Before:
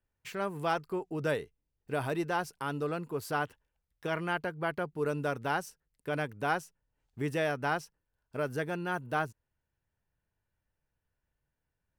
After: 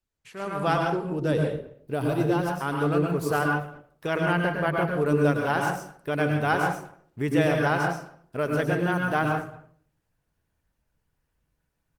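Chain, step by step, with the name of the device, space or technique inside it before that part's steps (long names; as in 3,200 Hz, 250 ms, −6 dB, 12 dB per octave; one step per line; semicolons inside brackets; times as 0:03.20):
0:00.85–0:02.57: octave-band graphic EQ 1,000/2,000/8,000 Hz −5/−7/−5 dB
speakerphone in a meeting room (convolution reverb RT60 0.55 s, pre-delay 100 ms, DRR 1 dB; far-end echo of a speakerphone 220 ms, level −23 dB; automatic gain control gain up to 10.5 dB; level −4.5 dB; Opus 20 kbit/s 48,000 Hz)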